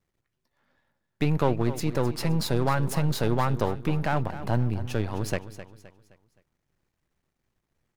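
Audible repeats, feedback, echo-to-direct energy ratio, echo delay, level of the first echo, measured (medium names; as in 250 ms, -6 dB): 3, 39%, -13.0 dB, 260 ms, -13.5 dB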